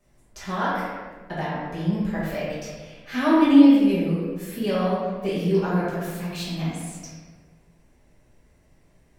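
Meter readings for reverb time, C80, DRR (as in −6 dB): 1.4 s, 1.0 dB, −9.0 dB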